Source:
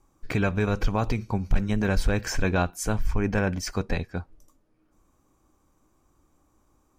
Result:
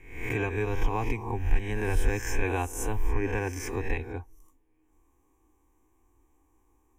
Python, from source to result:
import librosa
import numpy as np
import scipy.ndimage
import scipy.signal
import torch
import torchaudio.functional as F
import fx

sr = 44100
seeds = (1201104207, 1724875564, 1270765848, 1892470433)

y = fx.spec_swells(x, sr, rise_s=0.65)
y = fx.fixed_phaser(y, sr, hz=900.0, stages=8)
y = y * 10.0 ** (-2.0 / 20.0)